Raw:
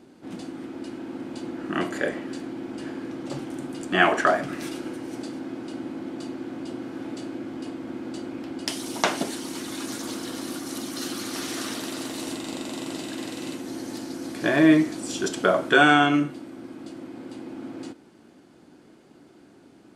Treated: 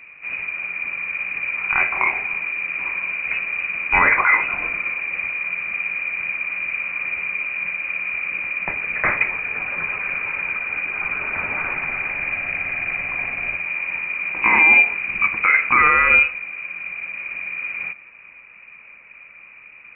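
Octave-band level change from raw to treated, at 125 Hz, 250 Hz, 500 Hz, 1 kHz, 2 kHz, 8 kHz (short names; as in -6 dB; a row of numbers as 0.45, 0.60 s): -5.5 dB, -15.0 dB, -8.0 dB, +4.0 dB, +11.5 dB, under -40 dB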